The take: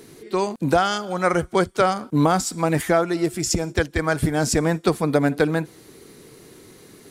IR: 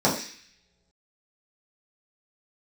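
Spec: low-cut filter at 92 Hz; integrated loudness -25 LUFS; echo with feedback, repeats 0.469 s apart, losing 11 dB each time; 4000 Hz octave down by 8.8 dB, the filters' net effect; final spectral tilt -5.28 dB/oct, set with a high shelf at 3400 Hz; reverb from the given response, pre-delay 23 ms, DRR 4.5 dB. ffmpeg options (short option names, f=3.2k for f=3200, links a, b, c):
-filter_complex "[0:a]highpass=92,highshelf=f=3.4k:g=-9,equalizer=f=4k:t=o:g=-5,aecho=1:1:469|938|1407:0.282|0.0789|0.0221,asplit=2[a][b];[1:a]atrim=start_sample=2205,adelay=23[c];[b][c]afir=irnorm=-1:irlink=0,volume=-21dB[d];[a][d]amix=inputs=2:normalize=0,volume=-6dB"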